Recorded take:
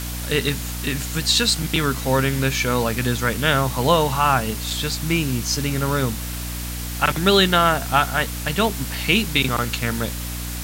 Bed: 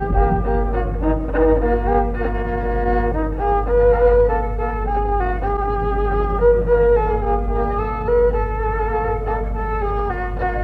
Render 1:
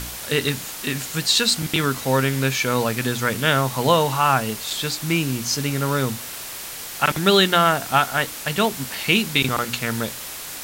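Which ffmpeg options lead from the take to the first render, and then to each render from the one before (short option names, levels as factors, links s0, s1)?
-af "bandreject=f=60:t=h:w=4,bandreject=f=120:t=h:w=4,bandreject=f=180:t=h:w=4,bandreject=f=240:t=h:w=4,bandreject=f=300:t=h:w=4"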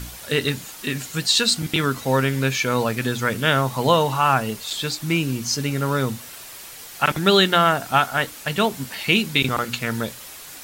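-af "afftdn=nr=7:nf=-34"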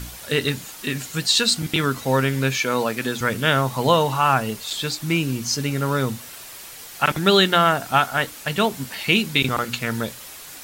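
-filter_complex "[0:a]asettb=1/sr,asplit=3[s0][s1][s2];[s0]atrim=end=2.594[s3];[s1]atrim=start=2.59:end=3.21,asetpts=PTS-STARTPTS,afade=t=in:d=0.004:c=qsin,afade=t=out:st=0.616:d=0.004:c=qsin,highpass=190[s4];[s2]atrim=start=3.206[s5];[s3][s4]acrossfade=d=0.004:c1=hsin:c2=qsin[s6];[s6][s5]acrossfade=d=0.004:c1=qsin:c2=hsin"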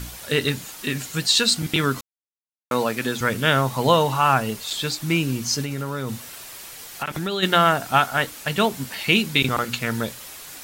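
-filter_complex "[0:a]asplit=3[s0][s1][s2];[s0]afade=t=out:st=5.62:d=0.02[s3];[s1]acompressor=threshold=0.0708:ratio=6:attack=3.2:release=140:knee=1:detection=peak,afade=t=in:st=5.62:d=0.02,afade=t=out:st=7.42:d=0.02[s4];[s2]afade=t=in:st=7.42:d=0.02[s5];[s3][s4][s5]amix=inputs=3:normalize=0,asplit=3[s6][s7][s8];[s6]atrim=end=2.01,asetpts=PTS-STARTPTS,afade=t=out:st=2.006:d=0.004:c=hsin[s9];[s7]atrim=start=2.01:end=2.71,asetpts=PTS-STARTPTS,volume=0[s10];[s8]atrim=start=2.71,asetpts=PTS-STARTPTS,afade=t=in:d=0.004:c=hsin[s11];[s9][s10][s11]concat=n=3:v=0:a=1"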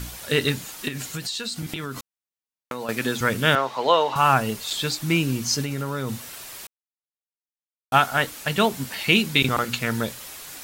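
-filter_complex "[0:a]asettb=1/sr,asplit=3[s0][s1][s2];[s0]atrim=end=0.884[s3];[s1]atrim=start=0.88:end=2.89,asetpts=PTS-STARTPTS,afade=t=in:d=0.004:c=qsin,afade=t=out:st=2.006:d=0.004:c=qsin,acompressor=threshold=0.0501:ratio=12:attack=3.2:release=140:knee=1:detection=peak[s4];[s2]atrim=start=2.886[s5];[s3][s4]acrossfade=d=0.004:c1=hsin:c2=qsin[s6];[s6][s5]acrossfade=d=0.004:c1=qsin:c2=hsin,asettb=1/sr,asplit=3[s7][s8][s9];[s7]atrim=end=3.554[s10];[s8]atrim=start=3.55:end=4.16,asetpts=PTS-STARTPTS,afade=t=in:d=0.004:c=qsin,afade=t=out:st=0.606:d=0.004:c=qsin,acrossover=split=330 5300:gain=0.0631 1 0.1[s11][s12][s13];[s11][s12][s13]amix=inputs=3:normalize=0[s14];[s9]atrim=start=4.156[s15];[s10][s14]acrossfade=d=0.004:c1=hsin:c2=qsin[s16];[s16][s15]acrossfade=d=0.004:c1=qsin:c2=hsin,asplit=3[s17][s18][s19];[s17]atrim=end=6.67,asetpts=PTS-STARTPTS,afade=t=out:st=6.666:d=0.004:c=hsin[s20];[s18]atrim=start=6.67:end=7.92,asetpts=PTS-STARTPTS,volume=0[s21];[s19]atrim=start=7.92,asetpts=PTS-STARTPTS,afade=t=in:d=0.004:c=hsin[s22];[s20][s21][s22]concat=n=3:v=0:a=1"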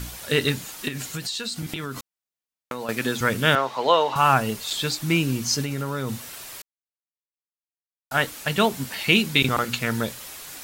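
-filter_complex "[0:a]asettb=1/sr,asplit=3[s0][s1][s2];[s0]atrim=end=2.754[s3];[s1]atrim=start=2.75:end=3.18,asetpts=PTS-STARTPTS,afade=t=in:d=0.004:c=qsin,afade=t=out:st=0.426:d=0.004:c=qsin,aeval=exprs='sgn(val(0))*max(abs(val(0))-0.0015,0)':c=same[s4];[s2]atrim=start=3.176[s5];[s3][s4]acrossfade=d=0.004:c1=hsin:c2=qsin[s6];[s6][s5]acrossfade=d=0.004:c1=qsin:c2=hsin,asplit=3[s7][s8][s9];[s7]atrim=end=6.62,asetpts=PTS-STARTPTS,afade=t=out:st=6.616:d=0.004:c=hsin[s10];[s8]atrim=start=6.62:end=8.11,asetpts=PTS-STARTPTS,volume=0[s11];[s9]atrim=start=8.11,asetpts=PTS-STARTPTS,afade=t=in:d=0.004:c=hsin[s12];[s10][s11][s12]concat=n=3:v=0:a=1"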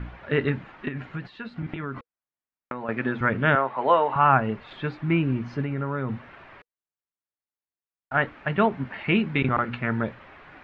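-af "lowpass=f=2100:w=0.5412,lowpass=f=2100:w=1.3066,bandreject=f=480:w=12"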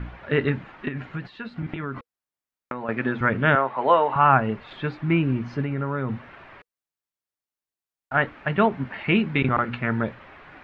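-af "volume=1.19"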